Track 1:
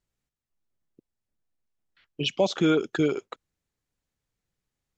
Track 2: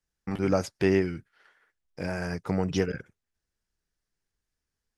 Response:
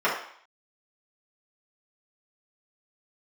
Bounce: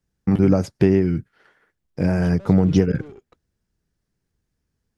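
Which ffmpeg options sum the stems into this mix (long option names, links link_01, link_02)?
-filter_complex "[0:a]aeval=exprs='(tanh(31.6*val(0)+0.55)-tanh(0.55))/31.6':channel_layout=same,volume=-17dB[link_01];[1:a]acompressor=threshold=-24dB:ratio=6,volume=2dB[link_02];[link_01][link_02]amix=inputs=2:normalize=0,equalizer=frequency=140:width=0.3:gain=14"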